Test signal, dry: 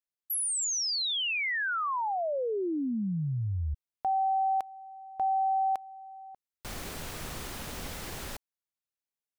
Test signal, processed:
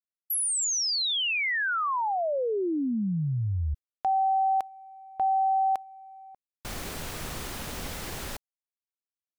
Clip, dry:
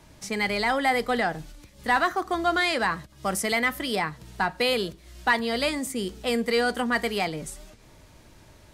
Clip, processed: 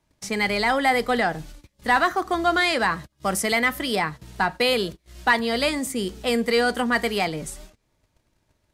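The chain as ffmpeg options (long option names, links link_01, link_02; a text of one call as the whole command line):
ffmpeg -i in.wav -af "agate=range=-21dB:threshold=-44dB:ratio=3:release=54:detection=rms,volume=3dB" out.wav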